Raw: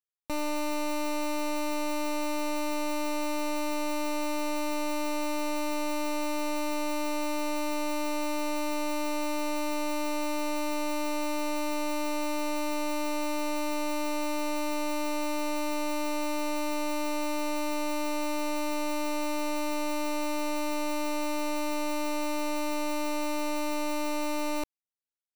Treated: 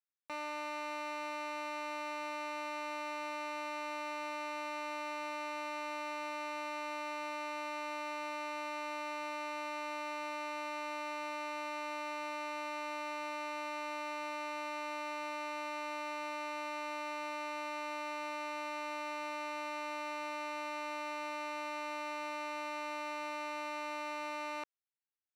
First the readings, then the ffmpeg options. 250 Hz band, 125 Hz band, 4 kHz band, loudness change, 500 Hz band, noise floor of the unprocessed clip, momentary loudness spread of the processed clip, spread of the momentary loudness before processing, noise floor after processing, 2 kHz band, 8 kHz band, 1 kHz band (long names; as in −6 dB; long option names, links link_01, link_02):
−17.0 dB, can't be measured, −9.0 dB, −8.5 dB, −10.5 dB, −29 dBFS, 0 LU, 0 LU, −41 dBFS, −3.5 dB, −15.5 dB, −5.0 dB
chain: -af "bandpass=frequency=1600:width_type=q:width=1.1:csg=0,volume=-1.5dB"